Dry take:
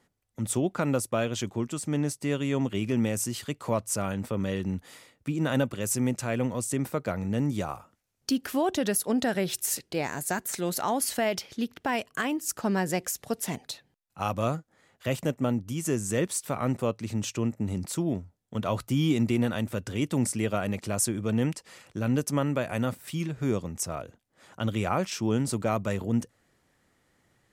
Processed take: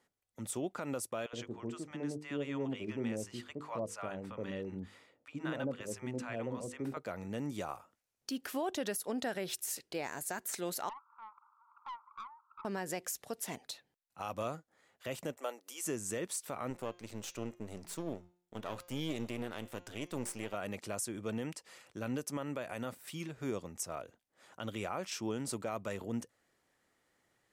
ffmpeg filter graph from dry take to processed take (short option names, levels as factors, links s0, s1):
-filter_complex "[0:a]asettb=1/sr,asplit=3[s0][s1][s2];[s0]atrim=end=1.264[s3];[s1]atrim=start=1.26:end=6.97,asetpts=PTS-STARTPTS,afade=t=in:d=0.004:c=qsin,afade=t=out:st=5.706:d=0.004:c=qsin,aemphasis=mode=reproduction:type=75fm,bandreject=f=50:t=h:w=6,bandreject=f=100:t=h:w=6,bandreject=f=150:t=h:w=6,bandreject=f=200:t=h:w=6,bandreject=f=250:t=h:w=6,bandreject=f=300:t=h:w=6,bandreject=f=350:t=h:w=6,bandreject=f=400:t=h:w=6,bandreject=f=450:t=h:w=6,bandreject=f=500:t=h:w=6,acrossover=split=750[s4][s5];[s4]adelay=70[s6];[s6][s5]amix=inputs=2:normalize=0,atrim=end_sample=251811[s7];[s2]atrim=start=6.966[s8];[s3][s7]acrossfade=d=0.004:c1=hsin:c2=qsin[s9];[s9][s8]acrossfade=d=0.004:c1=qsin:c2=hsin,asettb=1/sr,asplit=3[s10][s11][s12];[s10]atrim=end=10.894[s13];[s11]atrim=start=10.89:end=12.65,asetpts=PTS-STARTPTS,afade=t=in:d=0.004:c=qsin,afade=t=out:st=1.756:d=0.004:c=qsin,aeval=exprs='val(0)+0.5*0.0106*sgn(val(0))':c=same,asuperpass=centerf=1100:order=12:qfactor=2.2,aeval=exprs='(tanh(44.7*val(0)+0.35)-tanh(0.35))/44.7':c=same[s14];[s12]atrim=start=12.646[s15];[s13][s14]acrossfade=d=0.004:c1=hsin:c2=qsin[s16];[s16][s15]acrossfade=d=0.004:c1=qsin:c2=hsin,asettb=1/sr,asplit=3[s17][s18][s19];[s17]atrim=end=15.374[s20];[s18]atrim=start=15.37:end=15.85,asetpts=PTS-STARTPTS,afade=t=in:d=0.004:c=qsin,afade=t=out:st=0.476:d=0.004:c=qsin,highpass=f=450:w=0.5412,highpass=f=450:w=1.3066,highshelf=f=4900:g=6.5,acompressor=mode=upward:threshold=0.00562:ratio=2.5:attack=3.2:release=140:knee=2.83:detection=peak[s21];[s19]atrim=start=15.846[s22];[s20][s21]acrossfade=d=0.004:c1=hsin:c2=qsin[s23];[s23][s22]acrossfade=d=0.004:c1=qsin:c2=hsin,asettb=1/sr,asplit=3[s24][s25][s26];[s24]atrim=end=16.704[s27];[s25]atrim=start=16.7:end=20.54,asetpts=PTS-STARTPTS,afade=t=in:d=0.004:c=qsin,afade=t=out:st=3.836:d=0.004:c=qsin,aeval=exprs='if(lt(val(0),0),0.251*val(0),val(0))':c=same,bandreject=f=177.1:t=h:w=4,bandreject=f=354.2:t=h:w=4,bandreject=f=531.3:t=h:w=4,bandreject=f=708.4:t=h:w=4,bandreject=f=885.5:t=h:w=4,bandreject=f=1062.6:t=h:w=4,bandreject=f=1239.7:t=h:w=4,bandreject=f=1416.8:t=h:w=4,bandreject=f=1593.9:t=h:w=4,bandreject=f=1771:t=h:w=4,bandreject=f=1948.1:t=h:w=4,bandreject=f=2125.2:t=h:w=4,bandreject=f=2302.3:t=h:w=4,bandreject=f=2479.4:t=h:w=4,bandreject=f=2656.5:t=h:w=4,bandreject=f=2833.6:t=h:w=4,bandreject=f=3010.7:t=h:w=4,bandreject=f=3187.8:t=h:w=4,bandreject=f=3364.9:t=h:w=4,bandreject=f=3542:t=h:w=4,bandreject=f=3719.1:t=h:w=4,bandreject=f=3896.2:t=h:w=4,bandreject=f=4073.3:t=h:w=4,bandreject=f=4250.4:t=h:w=4,bandreject=f=4427.5:t=h:w=4,bandreject=f=4604.6:t=h:w=4,bandreject=f=4781.7:t=h:w=4,bandreject=f=4958.8:t=h:w=4,bandreject=f=5135.9:t=h:w=4,bandreject=f=5313:t=h:w=4,bandreject=f=5490.1:t=h:w=4,bandreject=f=5667.2:t=h:w=4,bandreject=f=5844.3:t=h:w=4,bandreject=f=6021.4:t=h:w=4,bandreject=f=6198.5:t=h:w=4,bandreject=f=6375.6:t=h:w=4,bandreject=f=6552.7:t=h:w=4,bandreject=f=6729.8:t=h:w=4,bandreject=f=6906.9:t=h:w=4,bandreject=f=7084:t=h:w=4[s28];[s26]atrim=start=20.536[s29];[s27][s28]acrossfade=d=0.004:c1=hsin:c2=qsin[s30];[s30][s29]acrossfade=d=0.004:c1=qsin:c2=hsin,bass=f=250:g=-9,treble=f=4000:g=0,alimiter=limit=0.0944:level=0:latency=1:release=99,volume=0.501"